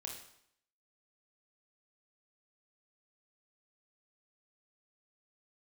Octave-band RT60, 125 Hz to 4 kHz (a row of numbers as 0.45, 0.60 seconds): 0.65, 0.70, 0.70, 0.70, 0.70, 0.65 seconds